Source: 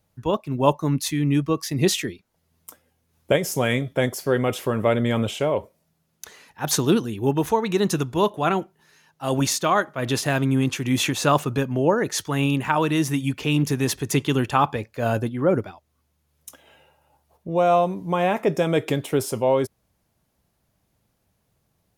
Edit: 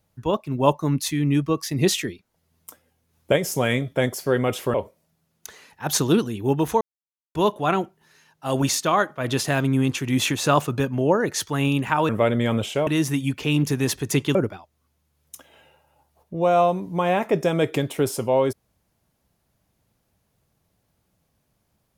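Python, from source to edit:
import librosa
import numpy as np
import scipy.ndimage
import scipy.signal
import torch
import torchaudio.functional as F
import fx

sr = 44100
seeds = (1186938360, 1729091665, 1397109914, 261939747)

y = fx.edit(x, sr, fx.move(start_s=4.74, length_s=0.78, to_s=12.87),
    fx.silence(start_s=7.59, length_s=0.54),
    fx.cut(start_s=14.35, length_s=1.14), tone=tone)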